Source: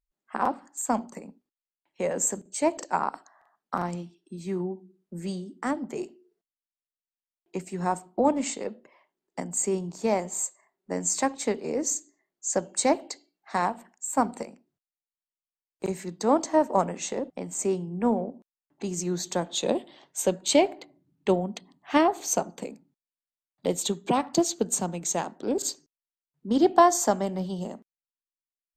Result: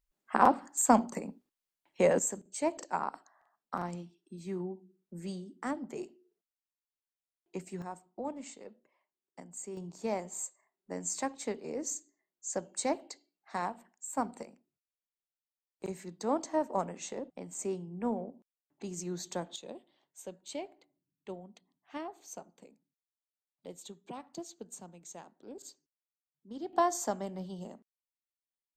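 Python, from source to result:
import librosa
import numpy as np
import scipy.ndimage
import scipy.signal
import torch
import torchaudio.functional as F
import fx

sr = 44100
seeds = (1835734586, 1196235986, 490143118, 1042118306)

y = fx.gain(x, sr, db=fx.steps((0.0, 3.0), (2.19, -7.0), (7.82, -16.0), (9.77, -9.0), (19.56, -20.0), (26.73, -10.0)))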